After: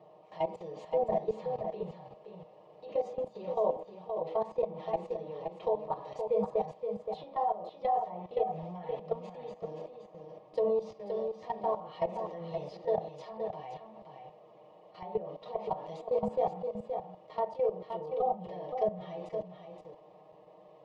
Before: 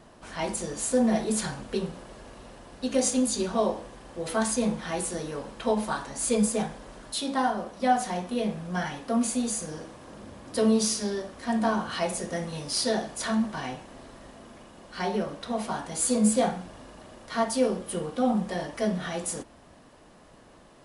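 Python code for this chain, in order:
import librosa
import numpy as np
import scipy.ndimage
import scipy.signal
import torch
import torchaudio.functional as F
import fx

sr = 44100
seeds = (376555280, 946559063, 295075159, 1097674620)

y = scipy.signal.sosfilt(scipy.signal.butter(4, 210.0, 'highpass', fs=sr, output='sos'), x)
y = y + 0.7 * np.pad(y, (int(6.5 * sr / 1000.0), 0))[:len(y)]
y = fx.env_lowpass_down(y, sr, base_hz=1600.0, full_db=-24.0)
y = fx.peak_eq(y, sr, hz=290.0, db=-4.0, octaves=1.2)
y = fx.level_steps(y, sr, step_db=14)
y = fx.env_lowpass(y, sr, base_hz=2300.0, full_db=-23.5)
y = fx.tilt_eq(y, sr, slope=-3.0)
y = fx.fixed_phaser(y, sr, hz=630.0, stages=4)
y = y + 10.0 ** (-6.5 / 20.0) * np.pad(y, (int(522 * sr / 1000.0), 0))[:len(y)]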